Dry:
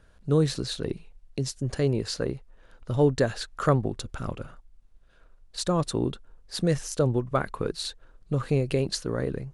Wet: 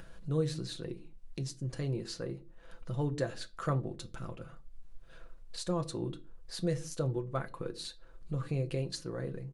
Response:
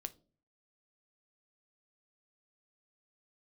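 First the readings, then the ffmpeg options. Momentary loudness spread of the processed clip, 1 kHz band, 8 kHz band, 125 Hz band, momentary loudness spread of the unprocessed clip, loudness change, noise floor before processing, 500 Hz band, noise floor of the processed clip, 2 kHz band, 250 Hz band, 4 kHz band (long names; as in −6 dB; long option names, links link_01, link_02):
13 LU, −10.0 dB, −9.5 dB, −7.5 dB, 13 LU, −9.0 dB, −57 dBFS, −10.5 dB, −54 dBFS, −10.0 dB, −9.5 dB, −9.5 dB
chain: -filter_complex "[0:a]acompressor=mode=upward:threshold=-27dB:ratio=2.5,aecho=1:1:6:0.49[link_01];[1:a]atrim=start_sample=2205,afade=type=out:start_time=0.28:duration=0.01,atrim=end_sample=12789[link_02];[link_01][link_02]afir=irnorm=-1:irlink=0,volume=-8dB"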